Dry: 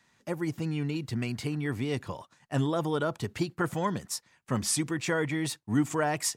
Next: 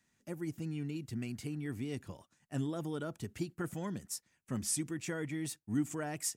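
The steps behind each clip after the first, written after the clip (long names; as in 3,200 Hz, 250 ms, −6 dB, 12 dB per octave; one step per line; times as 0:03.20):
octave-band graphic EQ 125/500/1,000/2,000/4,000 Hz −5/−6/−11/−4/−8 dB
level −3.5 dB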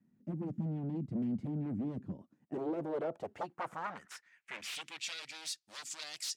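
wave folding −37.5 dBFS
band-pass filter sweep 210 Hz → 4,600 Hz, 0:02.11–0:05.24
level +13 dB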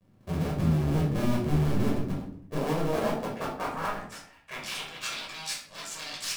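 sub-harmonics by changed cycles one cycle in 2, muted
convolution reverb RT60 0.55 s, pre-delay 10 ms, DRR −4 dB
level +3 dB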